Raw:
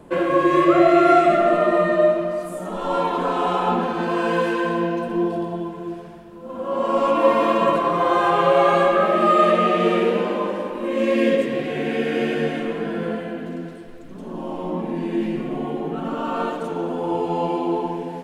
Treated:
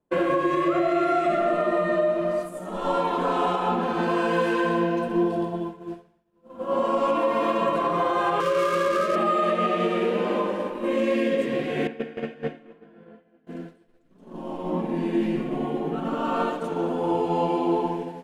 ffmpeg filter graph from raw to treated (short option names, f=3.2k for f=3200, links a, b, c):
-filter_complex "[0:a]asettb=1/sr,asplit=3[a][b][c];[a]atrim=end=8.404[d];[b]atrim=start=8.4:end=9.16,asetpts=PTS-STARTPTS,afade=t=in:d=0.004:c=qsin,afade=t=out:st=0.756:d=0.004:c=qsin,lowshelf=f=160:g=-8.5,adynamicsmooth=sensitivity=4.5:basefreq=740,asuperstop=centerf=820:order=20:qfactor=2.2[e];[c]atrim=start=9.156[f];[d][e]acrossfade=d=0.004:c1=hsin:c2=qsin[g];[g][f]acrossfade=d=0.004:c1=qsin:c2=hsin,asettb=1/sr,asplit=3[h][i][j];[h]atrim=end=11.874[k];[i]atrim=start=11.87:end=13.47,asetpts=PTS-STARTPTS,afade=t=in:d=0.004:c=qsin,afade=t=out:st=1.596:d=0.004:c=qsin,lowpass=f=2.3k:p=1,agate=range=-9dB:threshold=-21dB:ratio=16:release=100:detection=peak,bandreject=f=60:t=h:w=6,bandreject=f=120:t=h:w=6,bandreject=f=180:t=h:w=6,bandreject=f=240:t=h:w=6,bandreject=f=300:t=h:w=6,bandreject=f=360:t=h:w=6,bandreject=f=420:t=h:w=6,bandreject=f=480:t=h:w=6[l];[j]atrim=start=13.466[m];[k][l]acrossfade=d=0.004:c1=hsin:c2=qsin[n];[n][m]acrossfade=d=0.004:c1=qsin:c2=hsin,agate=range=-33dB:threshold=-24dB:ratio=3:detection=peak,alimiter=limit=-14dB:level=0:latency=1:release=255"